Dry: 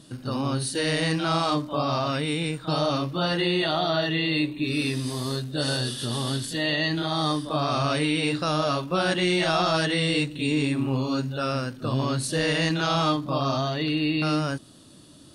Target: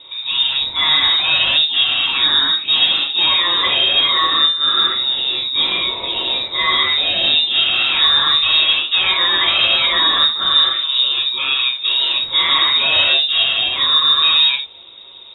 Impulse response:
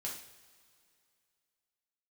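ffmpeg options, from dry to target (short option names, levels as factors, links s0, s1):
-filter_complex "[0:a]aeval=exprs='0.266*(cos(1*acos(clip(val(0)/0.266,-1,1)))-cos(1*PI/2))+0.0596*(cos(5*acos(clip(val(0)/0.266,-1,1)))-cos(5*PI/2))':c=same[s0];[1:a]atrim=start_sample=2205,atrim=end_sample=4410[s1];[s0][s1]afir=irnorm=-1:irlink=0,lowpass=f=3300:t=q:w=0.5098,lowpass=f=3300:t=q:w=0.6013,lowpass=f=3300:t=q:w=0.9,lowpass=f=3300:t=q:w=2.563,afreqshift=-3900,volume=2"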